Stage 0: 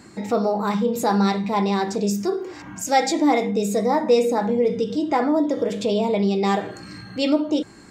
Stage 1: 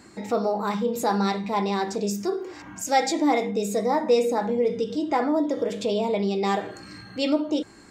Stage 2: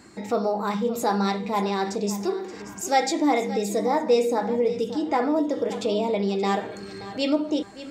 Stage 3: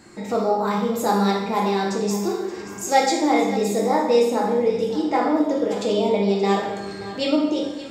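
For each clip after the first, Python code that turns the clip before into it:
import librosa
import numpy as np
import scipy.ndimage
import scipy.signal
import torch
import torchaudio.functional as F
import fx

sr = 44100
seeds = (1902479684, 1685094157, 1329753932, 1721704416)

y1 = fx.peak_eq(x, sr, hz=150.0, db=-5.0, octaves=1.1)
y1 = F.gain(torch.from_numpy(y1), -2.5).numpy()
y2 = fx.echo_feedback(y1, sr, ms=577, feedback_pct=29, wet_db=-14.5)
y3 = fx.rev_plate(y2, sr, seeds[0], rt60_s=0.92, hf_ratio=0.9, predelay_ms=0, drr_db=-0.5)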